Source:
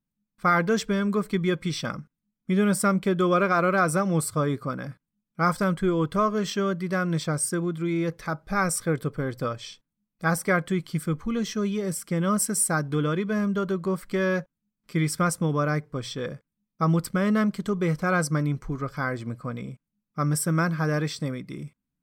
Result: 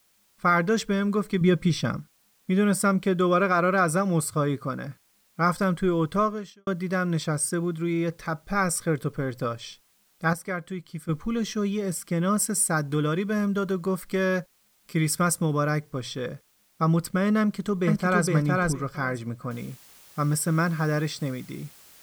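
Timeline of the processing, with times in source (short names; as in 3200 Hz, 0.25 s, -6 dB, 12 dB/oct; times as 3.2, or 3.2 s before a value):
1.41–1.97 low shelf 300 Hz +8.5 dB
6.23–6.67 fade out quadratic
10.33–11.09 gain -8 dB
12.76–15.86 high shelf 8000 Hz +9 dB
17.41–18.26 echo throw 0.46 s, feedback 15%, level -1.5 dB
19.51 noise floor step -65 dB -52 dB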